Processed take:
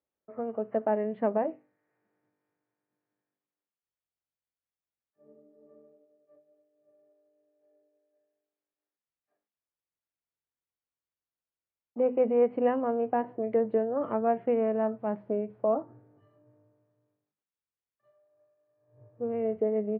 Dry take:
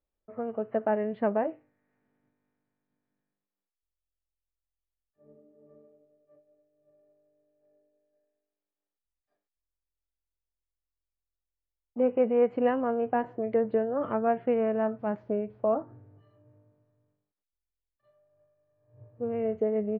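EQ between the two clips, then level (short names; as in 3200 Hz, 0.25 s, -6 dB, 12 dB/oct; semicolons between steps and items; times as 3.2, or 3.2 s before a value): dynamic EQ 1500 Hz, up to -5 dB, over -50 dBFS, Q 2.7; BPF 130–2500 Hz; notches 50/100/150/200/250 Hz; 0.0 dB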